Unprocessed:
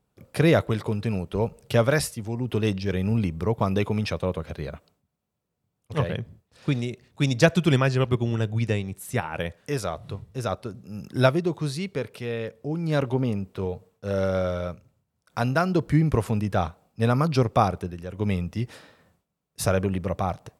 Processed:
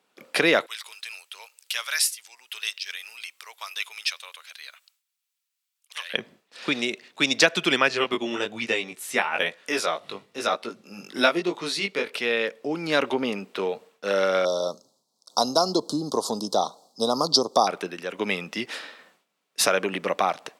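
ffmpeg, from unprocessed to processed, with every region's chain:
-filter_complex "[0:a]asettb=1/sr,asplit=3[s0][s1][s2];[s0]atrim=end=0.664[s3];[s1]atrim=start=0.66:end=6.14,asetpts=PTS-STARTPTS,afade=t=in:d=0.004:c=qsin,afade=t=out:st=5.476:d=0.004:c=qsin,highpass=940,aderivative[s4];[s2]atrim=start=6.136[s5];[s3][s4]acrossfade=d=0.004:c1=hsin:c2=qsin[s6];[s6][s5]acrossfade=d=0.004:c1=qsin:c2=hsin,asettb=1/sr,asplit=3[s7][s8][s9];[s7]atrim=end=7.884[s10];[s8]atrim=start=7.88:end=12.13,asetpts=PTS-STARTPTS,afade=t=in:d=0.004:c=qsin,afade=t=out:st=4.246:d=0.004:c=qsin,flanger=delay=17:depth=3.5:speed=1.1,bandreject=f=1600:w=22[s11];[s9]atrim=start=12.126[s12];[s10][s11]acrossfade=d=0.004:c1=hsin:c2=qsin[s13];[s13][s12]acrossfade=d=0.004:c1=qsin:c2=hsin,asettb=1/sr,asplit=3[s14][s15][s16];[s14]atrim=end=14.454[s17];[s15]atrim=start=14.45:end=17.67,asetpts=PTS-STARTPTS,afade=t=in:d=0.004:c=qsin,afade=t=out:st=3.216:d=0.004:c=qsin,asuperstop=centerf=2100:order=8:qfactor=0.69,equalizer=f=4700:w=0.51:g=9.5[s18];[s16]atrim=start=17.666[s19];[s17][s18]acrossfade=d=0.004:c1=hsin:c2=qsin[s20];[s20][s19]acrossfade=d=0.004:c1=qsin:c2=hsin,acompressor=threshold=0.0708:ratio=3,highpass=f=240:w=0.5412,highpass=f=240:w=1.3066,equalizer=f=2800:w=0.39:g=12,volume=1.33"

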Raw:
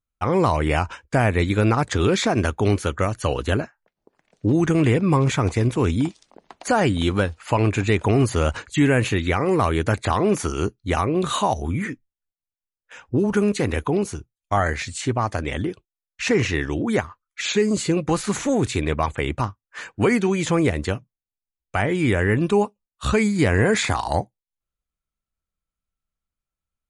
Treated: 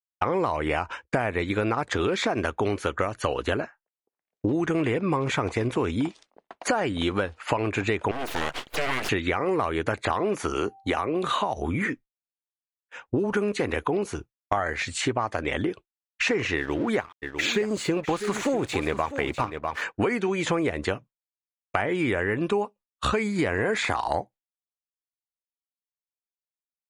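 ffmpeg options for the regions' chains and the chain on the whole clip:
-filter_complex "[0:a]asettb=1/sr,asplit=3[s0][s1][s2];[s0]atrim=end=8.114[s3];[s1]atrim=start=8.11:end=9.09,asetpts=PTS-STARTPTS,afade=t=in:d=0.004:c=qsin,afade=t=out:st=0.976:d=0.004:c=qsin,lowshelf=f=360:g=-9,acompressor=threshold=0.0501:ratio=1.5:attack=3.2:release=140:knee=1:detection=peak,aeval=exprs='abs(val(0))':c=same[s4];[s2]atrim=start=9.086[s5];[s3][s4]acrossfade=d=0.004:c1=hsin:c2=qsin[s6];[s6][s5]acrossfade=d=0.004:c1=qsin:c2=hsin,asettb=1/sr,asplit=3[s7][s8][s9];[s7]atrim=end=10.554[s10];[s8]atrim=start=10.55:end=11.57,asetpts=PTS-STARTPTS,afade=t=in:d=0.004:c=qsin,afade=t=out:st=1.016:d=0.004:c=qsin,highshelf=f=10000:g=10,acrossover=split=200|5100[s11][s12][s13];[s11]acompressor=threshold=0.0224:ratio=4[s14];[s12]acompressor=threshold=0.0794:ratio=4[s15];[s13]acompressor=threshold=0.00447:ratio=4[s16];[s14][s15][s16]amix=inputs=3:normalize=0,aeval=exprs='val(0)+0.002*sin(2*PI*780*n/s)':c=same[s17];[s9]atrim=start=11.566[s18];[s10][s17]acrossfade=d=0.004:c1=hsin:c2=qsin[s19];[s19][s18]acrossfade=d=0.004:c1=qsin:c2=hsin,asettb=1/sr,asplit=3[s20][s21][s22];[s20]atrim=end=16.574[s23];[s21]atrim=start=16.57:end=19.82,asetpts=PTS-STARTPTS,afade=t=in:d=0.004:c=qsin,afade=t=out:st=3.246:d=0.004:c=qsin,aeval=exprs='sgn(val(0))*max(abs(val(0))-0.00944,0)':c=same,aecho=1:1:648:0.251,atrim=end_sample=143325[s24];[s22]atrim=start=19.816[s25];[s23][s24]acrossfade=d=0.004:c1=hsin:c2=qsin[s26];[s26][s25]acrossfade=d=0.004:c1=qsin:c2=hsin,agate=range=0.0224:threshold=0.0158:ratio=3:detection=peak,bass=f=250:g=-10,treble=f=4000:g=-9,acompressor=threshold=0.0316:ratio=6,volume=2.37"

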